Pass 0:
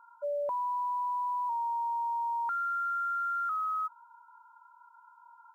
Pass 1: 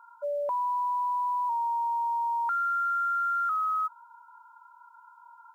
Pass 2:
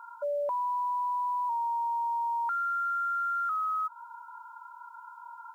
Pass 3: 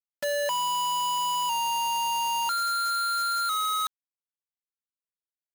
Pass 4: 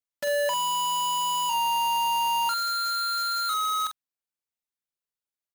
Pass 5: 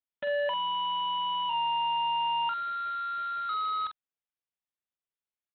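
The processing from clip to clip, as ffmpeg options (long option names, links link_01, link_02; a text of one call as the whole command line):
ffmpeg -i in.wav -af "lowshelf=frequency=430:gain=-8.5,volume=5dB" out.wav
ffmpeg -i in.wav -af "alimiter=level_in=9.5dB:limit=-24dB:level=0:latency=1:release=153,volume=-9.5dB,volume=6.5dB" out.wav
ffmpeg -i in.wav -af "acrusher=bits=4:mix=0:aa=0.000001" out.wav
ffmpeg -i in.wav -filter_complex "[0:a]asplit=2[link_01][link_02];[link_02]adelay=45,volume=-8dB[link_03];[link_01][link_03]amix=inputs=2:normalize=0" out.wav
ffmpeg -i in.wav -af "aresample=8000,aresample=44100,volume=-3.5dB" out.wav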